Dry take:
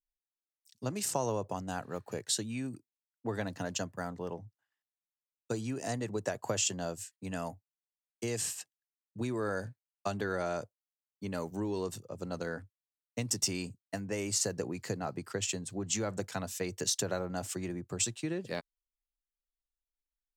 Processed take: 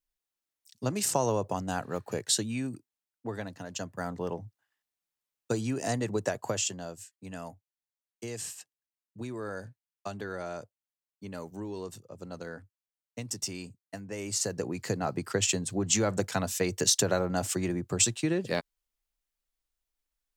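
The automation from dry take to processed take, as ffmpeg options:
ffmpeg -i in.wav -af "volume=25.5dB,afade=type=out:start_time=2.41:duration=1.25:silence=0.316228,afade=type=in:start_time=3.66:duration=0.53:silence=0.316228,afade=type=out:start_time=6.16:duration=0.68:silence=0.375837,afade=type=in:start_time=14.09:duration=1.22:silence=0.298538" out.wav

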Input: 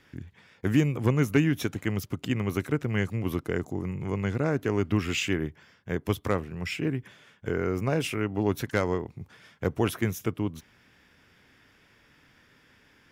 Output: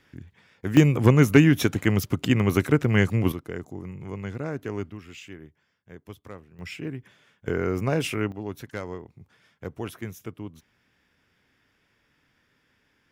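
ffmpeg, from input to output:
ffmpeg -i in.wav -af "asetnsamples=nb_out_samples=441:pad=0,asendcmd='0.77 volume volume 7dB;3.32 volume volume -5dB;4.9 volume volume -15dB;6.59 volume volume -5dB;7.48 volume volume 2dB;8.32 volume volume -8dB',volume=-2dB" out.wav

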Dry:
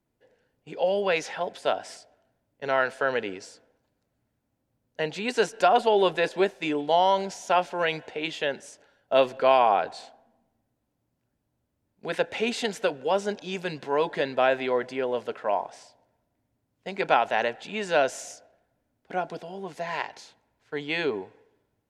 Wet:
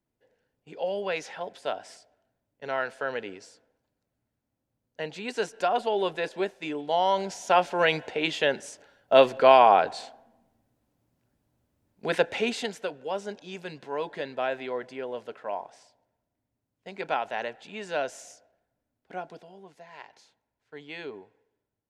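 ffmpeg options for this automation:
ffmpeg -i in.wav -af "volume=10dB,afade=type=in:start_time=6.82:duration=1.08:silence=0.354813,afade=type=out:start_time=12.08:duration=0.72:silence=0.298538,afade=type=out:start_time=19.15:duration=0.75:silence=0.281838,afade=type=in:start_time=19.9:duration=0.24:silence=0.473151" out.wav

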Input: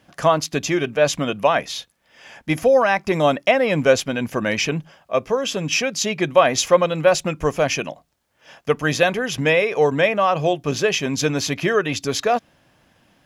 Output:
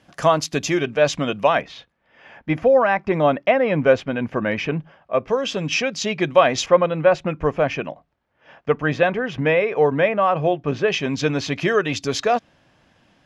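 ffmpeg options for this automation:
ffmpeg -i in.wav -af "asetnsamples=nb_out_samples=441:pad=0,asendcmd='0.79 lowpass f 5600;1.62 lowpass f 2200;5.28 lowpass f 4800;6.66 lowpass f 2200;10.88 lowpass f 4000;11.54 lowpass f 6600',lowpass=10000" out.wav

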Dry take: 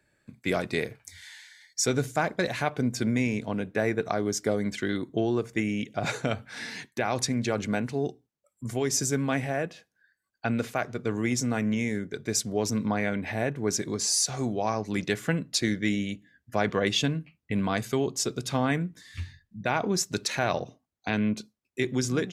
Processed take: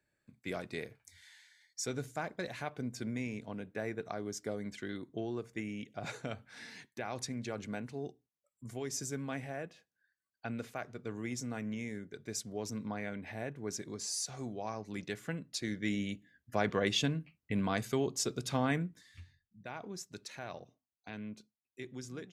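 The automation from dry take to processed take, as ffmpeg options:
ffmpeg -i in.wav -af "volume=-5.5dB,afade=type=in:start_time=15.61:duration=0.47:silence=0.473151,afade=type=out:start_time=18.8:duration=0.42:silence=0.251189" out.wav

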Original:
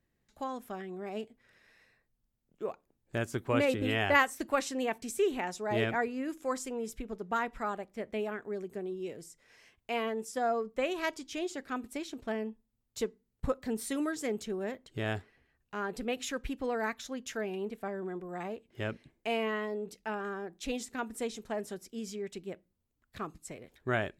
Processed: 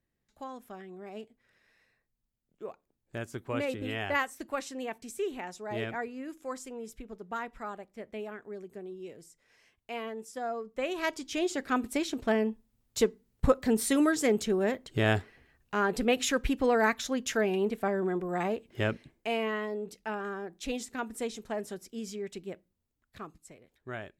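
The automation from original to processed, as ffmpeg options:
ffmpeg -i in.wav -af "volume=8dB,afade=type=in:start_time=10.66:duration=1.12:silence=0.237137,afade=type=out:start_time=18.65:duration=0.62:silence=0.446684,afade=type=out:start_time=22.47:duration=1.14:silence=0.316228" out.wav

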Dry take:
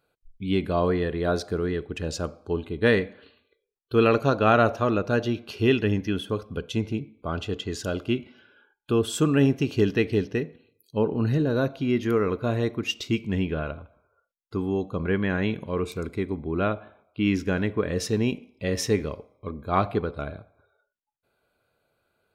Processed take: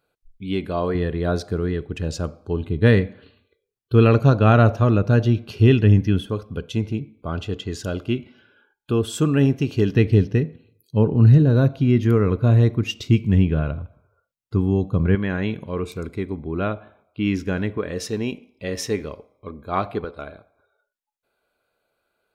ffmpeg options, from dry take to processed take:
ffmpeg -i in.wav -af "asetnsamples=nb_out_samples=441:pad=0,asendcmd='0.95 equalizer g 8;2.6 equalizer g 14;6.26 equalizer g 5.5;9.95 equalizer g 14.5;15.15 equalizer g 3;17.78 equalizer g -3.5;20.04 equalizer g -10',equalizer=frequency=110:width_type=o:width=1.9:gain=-1" out.wav

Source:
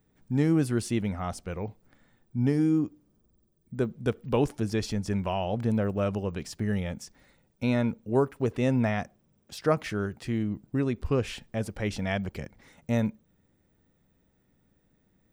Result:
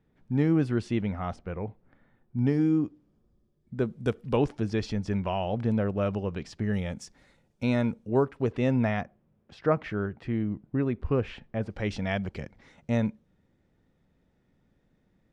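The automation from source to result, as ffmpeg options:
ffmpeg -i in.wav -af "asetnsamples=nb_out_samples=441:pad=0,asendcmd='1.36 lowpass f 2100;2.39 lowpass f 4400;3.85 lowpass f 9200;4.37 lowpass f 4300;6.74 lowpass f 8800;8.09 lowpass f 4400;9.01 lowpass f 2300;11.7 lowpass f 5200',lowpass=3400" out.wav

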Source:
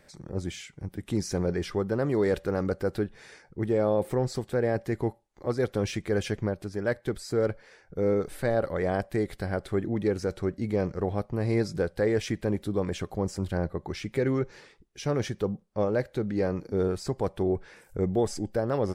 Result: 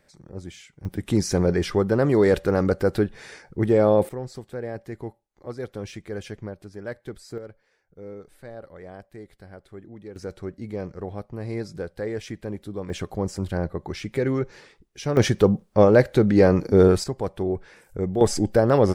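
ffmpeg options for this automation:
ffmpeg -i in.wav -af "asetnsamples=nb_out_samples=441:pad=0,asendcmd='0.85 volume volume 7dB;4.09 volume volume -6dB;7.38 volume volume -14dB;10.16 volume volume -4.5dB;12.9 volume volume 2.5dB;15.17 volume volume 11.5dB;17.04 volume volume 1dB;18.21 volume volume 9.5dB',volume=-4.5dB" out.wav

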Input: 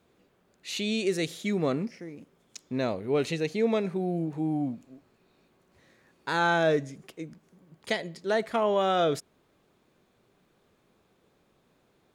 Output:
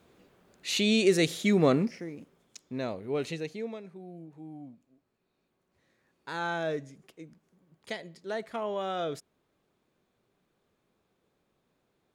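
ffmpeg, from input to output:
ffmpeg -i in.wav -af "volume=12.5dB,afade=type=out:start_time=1.73:duration=0.87:silence=0.334965,afade=type=out:start_time=3.33:duration=0.45:silence=0.281838,afade=type=in:start_time=4.88:duration=1.57:silence=0.398107" out.wav

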